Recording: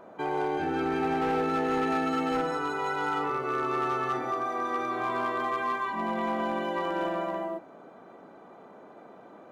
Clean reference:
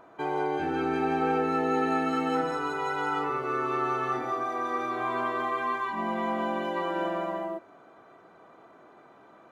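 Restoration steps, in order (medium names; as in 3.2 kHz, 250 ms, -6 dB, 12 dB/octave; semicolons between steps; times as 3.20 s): clip repair -22.5 dBFS; noise print and reduce 6 dB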